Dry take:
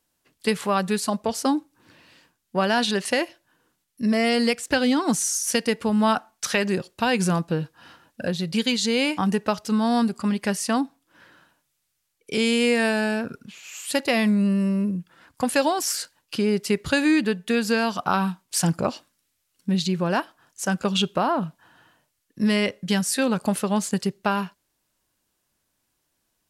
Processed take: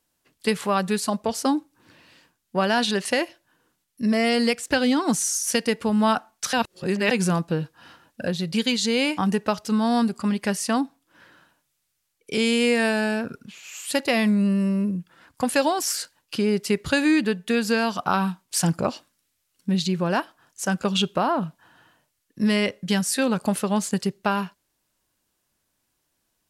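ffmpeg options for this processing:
ffmpeg -i in.wav -filter_complex "[0:a]asplit=3[link_01][link_02][link_03];[link_01]atrim=end=6.532[link_04];[link_02]atrim=start=6.528:end=7.112,asetpts=PTS-STARTPTS,areverse[link_05];[link_03]atrim=start=7.108[link_06];[link_04][link_05]acrossfade=duration=0.004:curve1=hsin:curve2=hsin[link_07];[link_07][link_06]acrossfade=duration=0.004:curve1=hsin:curve2=hsin" out.wav

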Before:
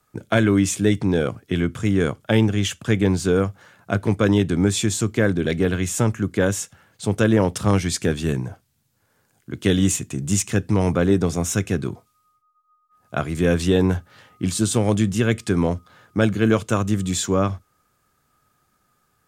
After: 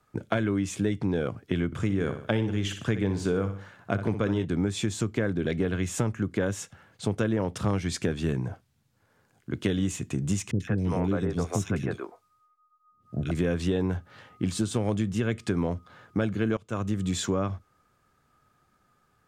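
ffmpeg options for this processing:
ffmpeg -i in.wav -filter_complex "[0:a]asettb=1/sr,asplit=3[link_01][link_02][link_03];[link_01]atrim=end=1.664[link_04];[link_02]atrim=start=1.66:end=4.45,asetpts=PTS-STARTPTS,afade=type=in:duration=0.004:curve=qsin,afade=type=out:start_time=2.786:duration=0.004:curve=qsin,aecho=1:1:61|122|183|244:0.299|0.102|0.0345|0.0117,atrim=end_sample=123039[link_05];[link_03]atrim=start=4.446[link_06];[link_04][link_05]acrossfade=duration=0.004:curve1=hsin:curve2=qsin[link_07];[link_07][link_06]acrossfade=duration=0.004:curve1=qsin:curve2=hsin,asettb=1/sr,asplit=3[link_08][link_09][link_10];[link_08]atrim=end=10.514[link_11];[link_09]atrim=start=10.51:end=13.31,asetpts=PTS-STARTPTS,afade=type=in:duration=0.004:curve=qsin,afade=type=out:start_time=2.796:duration=0.004:curve=qsin,acrossover=split=390|2500[link_12][link_13][link_14];[link_14]adelay=90[link_15];[link_13]adelay=160[link_16];[link_12][link_16][link_15]amix=inputs=3:normalize=0,atrim=end_sample=123480[link_17];[link_10]atrim=start=13.306[link_18];[link_11][link_17]acrossfade=duration=0.004:curve1=hsin:curve2=qsin[link_19];[link_19][link_18]acrossfade=duration=0.004:curve1=qsin:curve2=hsin,asplit=2[link_20][link_21];[link_20]atrim=end=16.57,asetpts=PTS-STARTPTS,afade=type=out:start_time=16.566:duration=0.004:curve=hsin:silence=0.125893[link_22];[link_21]atrim=start=16.57,asetpts=PTS-STARTPTS,afade=type=in:duration=0.6:silence=0.125893[link_23];[link_22][link_23]concat=n=2:v=0:a=1,lowpass=frequency=3300:poles=1,acompressor=threshold=-24dB:ratio=4" out.wav

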